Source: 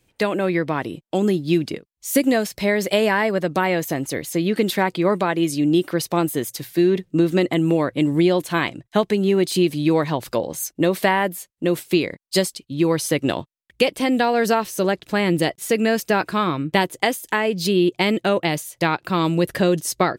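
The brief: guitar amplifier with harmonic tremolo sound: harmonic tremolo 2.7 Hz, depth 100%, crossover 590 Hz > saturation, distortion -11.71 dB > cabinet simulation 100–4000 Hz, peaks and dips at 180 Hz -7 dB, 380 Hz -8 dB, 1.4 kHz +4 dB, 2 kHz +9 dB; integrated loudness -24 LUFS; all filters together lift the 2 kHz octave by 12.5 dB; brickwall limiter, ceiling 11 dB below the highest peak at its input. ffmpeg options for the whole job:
-filter_complex "[0:a]equalizer=f=2000:t=o:g=7,alimiter=limit=0.316:level=0:latency=1,acrossover=split=590[s0][s1];[s0]aeval=exprs='val(0)*(1-1/2+1/2*cos(2*PI*2.7*n/s))':c=same[s2];[s1]aeval=exprs='val(0)*(1-1/2-1/2*cos(2*PI*2.7*n/s))':c=same[s3];[s2][s3]amix=inputs=2:normalize=0,asoftclip=threshold=0.0841,highpass=100,equalizer=f=180:t=q:w=4:g=-7,equalizer=f=380:t=q:w=4:g=-8,equalizer=f=1400:t=q:w=4:g=4,equalizer=f=2000:t=q:w=4:g=9,lowpass=f=4000:w=0.5412,lowpass=f=4000:w=1.3066,volume=1.68"

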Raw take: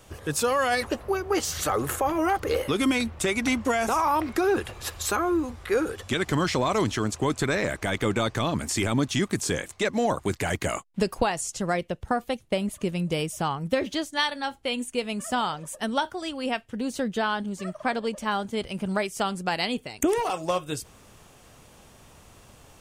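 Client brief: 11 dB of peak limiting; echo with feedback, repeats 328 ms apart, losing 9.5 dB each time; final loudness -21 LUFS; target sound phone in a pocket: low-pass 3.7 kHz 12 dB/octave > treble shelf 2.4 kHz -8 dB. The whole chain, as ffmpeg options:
-af "alimiter=limit=0.0891:level=0:latency=1,lowpass=3700,highshelf=f=2400:g=-8,aecho=1:1:328|656|984|1312:0.335|0.111|0.0365|0.012,volume=3.55"

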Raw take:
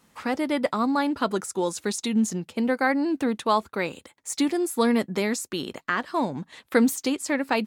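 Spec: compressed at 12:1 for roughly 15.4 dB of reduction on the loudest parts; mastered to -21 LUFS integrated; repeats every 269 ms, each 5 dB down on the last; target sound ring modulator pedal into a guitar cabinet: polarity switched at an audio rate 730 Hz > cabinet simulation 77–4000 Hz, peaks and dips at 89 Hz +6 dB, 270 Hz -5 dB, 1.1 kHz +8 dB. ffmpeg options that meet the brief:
-af "acompressor=threshold=0.0282:ratio=12,aecho=1:1:269|538|807|1076|1345|1614|1883:0.562|0.315|0.176|0.0988|0.0553|0.031|0.0173,aeval=exprs='val(0)*sgn(sin(2*PI*730*n/s))':c=same,highpass=77,equalizer=f=89:t=q:w=4:g=6,equalizer=f=270:t=q:w=4:g=-5,equalizer=f=1100:t=q:w=4:g=8,lowpass=f=4000:w=0.5412,lowpass=f=4000:w=1.3066,volume=3.55"

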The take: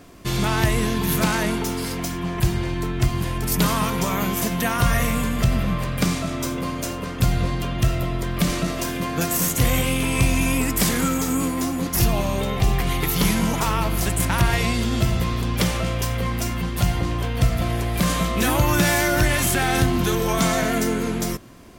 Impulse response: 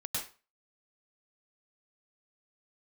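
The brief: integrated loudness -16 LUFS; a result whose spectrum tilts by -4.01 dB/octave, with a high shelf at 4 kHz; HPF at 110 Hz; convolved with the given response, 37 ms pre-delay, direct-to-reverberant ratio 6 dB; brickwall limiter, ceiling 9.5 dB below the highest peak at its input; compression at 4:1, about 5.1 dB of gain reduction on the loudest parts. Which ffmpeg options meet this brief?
-filter_complex "[0:a]highpass=110,highshelf=f=4000:g=4.5,acompressor=threshold=0.0891:ratio=4,alimiter=limit=0.133:level=0:latency=1,asplit=2[s0][s1];[1:a]atrim=start_sample=2205,adelay=37[s2];[s1][s2]afir=irnorm=-1:irlink=0,volume=0.355[s3];[s0][s3]amix=inputs=2:normalize=0,volume=3.16"

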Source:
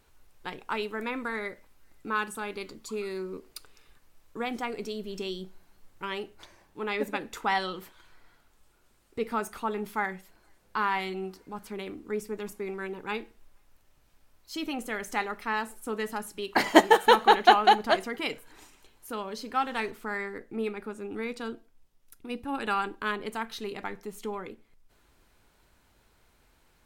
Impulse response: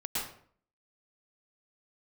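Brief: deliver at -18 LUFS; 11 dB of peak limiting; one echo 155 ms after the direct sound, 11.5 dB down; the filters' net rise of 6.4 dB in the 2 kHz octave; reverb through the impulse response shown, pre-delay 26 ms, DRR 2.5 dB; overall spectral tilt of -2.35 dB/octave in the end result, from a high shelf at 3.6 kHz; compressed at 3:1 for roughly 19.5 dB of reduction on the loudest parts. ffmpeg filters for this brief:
-filter_complex "[0:a]equalizer=f=2000:t=o:g=9,highshelf=f=3600:g=-4.5,acompressor=threshold=0.0126:ratio=3,alimiter=level_in=2:limit=0.0631:level=0:latency=1,volume=0.501,aecho=1:1:155:0.266,asplit=2[s0][s1];[1:a]atrim=start_sample=2205,adelay=26[s2];[s1][s2]afir=irnorm=-1:irlink=0,volume=0.422[s3];[s0][s3]amix=inputs=2:normalize=0,volume=11.9"

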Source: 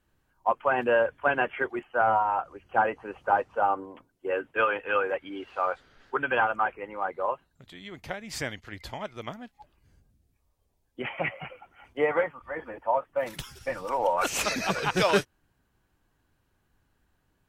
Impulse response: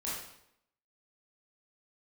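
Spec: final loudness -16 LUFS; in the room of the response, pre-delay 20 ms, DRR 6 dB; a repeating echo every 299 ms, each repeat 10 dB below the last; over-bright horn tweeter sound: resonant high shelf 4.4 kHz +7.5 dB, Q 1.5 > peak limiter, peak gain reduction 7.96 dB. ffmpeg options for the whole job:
-filter_complex "[0:a]aecho=1:1:299|598|897|1196:0.316|0.101|0.0324|0.0104,asplit=2[s0][s1];[1:a]atrim=start_sample=2205,adelay=20[s2];[s1][s2]afir=irnorm=-1:irlink=0,volume=0.355[s3];[s0][s3]amix=inputs=2:normalize=0,highshelf=f=4400:t=q:w=1.5:g=7.5,volume=4.47,alimiter=limit=0.631:level=0:latency=1"

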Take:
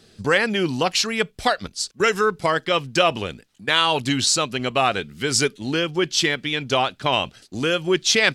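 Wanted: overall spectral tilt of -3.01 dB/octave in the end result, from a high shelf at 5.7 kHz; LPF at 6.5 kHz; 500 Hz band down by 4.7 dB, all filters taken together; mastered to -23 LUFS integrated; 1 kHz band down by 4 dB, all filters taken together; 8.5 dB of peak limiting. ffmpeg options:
-af "lowpass=6500,equalizer=f=500:t=o:g=-5,equalizer=f=1000:t=o:g=-4,highshelf=f=5700:g=3,volume=1.19,alimiter=limit=0.282:level=0:latency=1"

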